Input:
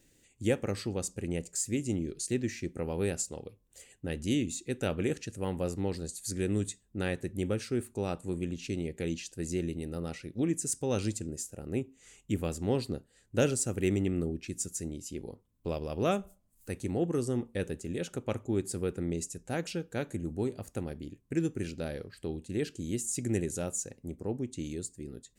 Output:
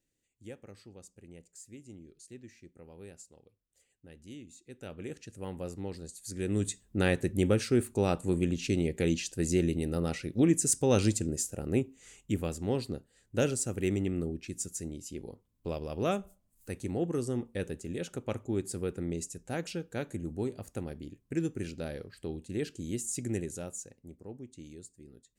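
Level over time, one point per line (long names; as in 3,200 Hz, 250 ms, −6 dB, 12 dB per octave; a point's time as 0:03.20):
0:04.47 −17.5 dB
0:05.39 −6 dB
0:06.26 −6 dB
0:06.81 +5.5 dB
0:11.61 +5.5 dB
0:12.58 −1.5 dB
0:23.16 −1.5 dB
0:24.23 −10.5 dB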